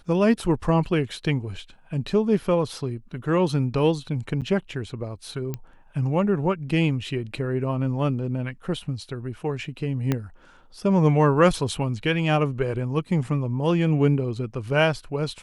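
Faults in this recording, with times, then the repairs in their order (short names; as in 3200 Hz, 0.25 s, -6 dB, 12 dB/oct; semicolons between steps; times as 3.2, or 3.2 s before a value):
4.41–4.42 gap 7.8 ms
5.54 pop -17 dBFS
10.12 pop -10 dBFS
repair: de-click; interpolate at 4.41, 7.8 ms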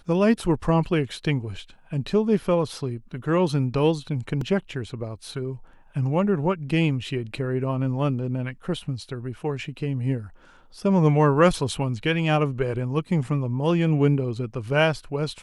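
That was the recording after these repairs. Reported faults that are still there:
10.12 pop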